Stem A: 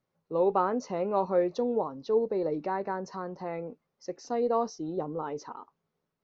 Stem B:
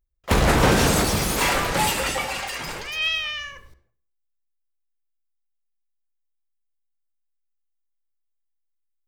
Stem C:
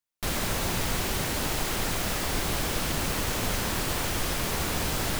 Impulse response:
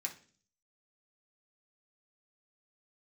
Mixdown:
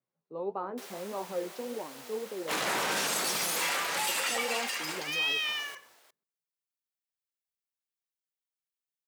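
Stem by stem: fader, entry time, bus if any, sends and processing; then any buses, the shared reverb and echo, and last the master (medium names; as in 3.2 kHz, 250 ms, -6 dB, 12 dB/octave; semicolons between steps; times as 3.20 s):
-5.5 dB, 0.00 s, no send, echo send -19.5 dB, flange 1.7 Hz, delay 6.8 ms, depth 9.4 ms, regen +55%
-2.0 dB, 2.20 s, no send, no echo send, high-pass 1.3 kHz 6 dB/octave; peak limiter -19 dBFS, peak gain reduction 7.5 dB
-10.5 dB, 0.55 s, no send, echo send -20.5 dB, high-pass 440 Hz 24 dB/octave; auto duck -7 dB, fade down 1.15 s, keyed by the first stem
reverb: none
echo: delay 357 ms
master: high-pass 130 Hz 24 dB/octave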